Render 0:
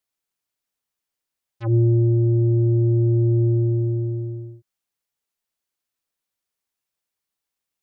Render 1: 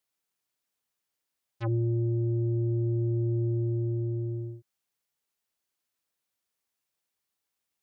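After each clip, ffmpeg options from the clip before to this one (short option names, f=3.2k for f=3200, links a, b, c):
-af "highpass=f=55:p=1,acompressor=threshold=-29dB:ratio=2.5"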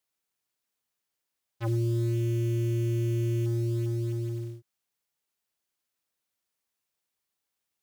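-af "acrusher=bits=6:mode=log:mix=0:aa=0.000001"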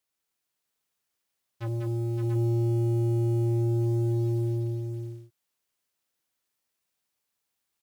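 -filter_complex "[0:a]asoftclip=type=tanh:threshold=-25dB,asplit=2[a][b];[b]aecho=0:1:195|564|684:0.631|0.473|0.531[c];[a][c]amix=inputs=2:normalize=0"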